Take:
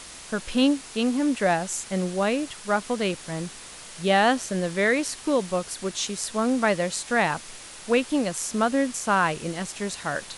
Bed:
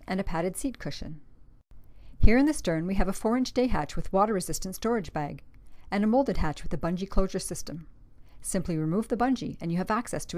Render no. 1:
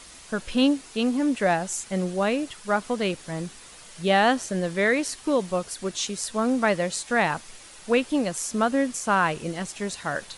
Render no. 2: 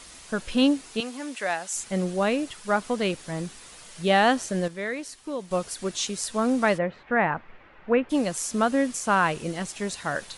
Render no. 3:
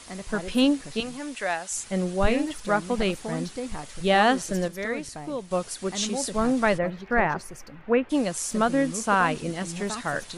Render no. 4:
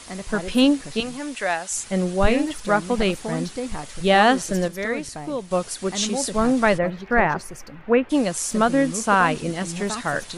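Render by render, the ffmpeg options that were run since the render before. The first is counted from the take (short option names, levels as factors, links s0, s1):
-af "afftdn=nr=6:nf=-43"
-filter_complex "[0:a]asettb=1/sr,asplit=3[s0][s1][s2];[s0]atrim=end=1.004[s3];[s1]atrim=start=1:end=1.76,asetpts=PTS-STARTPTS,afade=t=in:d=0.004:c=qsin,afade=t=out:st=0.756:d=0.004:c=qsin,highpass=f=1200:p=1[s4];[s2]atrim=start=1.756[s5];[s3][s4]acrossfade=d=0.004:c1=hsin:c2=qsin[s6];[s6][s5]acrossfade=d=0.004:c1=qsin:c2=hsin,asplit=3[s7][s8][s9];[s7]afade=t=out:st=6.77:d=0.02[s10];[s8]lowpass=f=2200:w=0.5412,lowpass=f=2200:w=1.3066,afade=t=in:st=6.77:d=0.02,afade=t=out:st=8.09:d=0.02[s11];[s9]afade=t=in:st=8.09:d=0.02[s12];[s10][s11][s12]amix=inputs=3:normalize=0,asplit=3[s13][s14][s15];[s13]atrim=end=4.682[s16];[s14]atrim=start=4.678:end=5.512,asetpts=PTS-STARTPTS,volume=0.355[s17];[s15]atrim=start=5.508[s18];[s16][s17]acrossfade=d=0.004:c1=hsin:c2=hsin[s19];[s19][s18]acrossfade=d=0.004:c1=hsin:c2=hsin"
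-filter_complex "[1:a]volume=0.398[s0];[0:a][s0]amix=inputs=2:normalize=0"
-af "volume=1.58"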